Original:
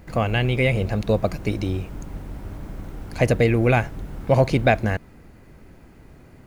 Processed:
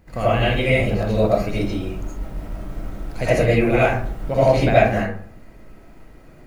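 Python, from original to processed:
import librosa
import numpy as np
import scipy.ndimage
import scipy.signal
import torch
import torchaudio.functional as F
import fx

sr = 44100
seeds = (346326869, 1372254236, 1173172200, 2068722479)

p1 = fx.level_steps(x, sr, step_db=11)
p2 = x + F.gain(torch.from_numpy(p1), -3.0).numpy()
p3 = fx.rev_freeverb(p2, sr, rt60_s=0.55, hf_ratio=0.5, predelay_ms=40, drr_db=-10.0)
y = F.gain(torch.from_numpy(p3), -10.0).numpy()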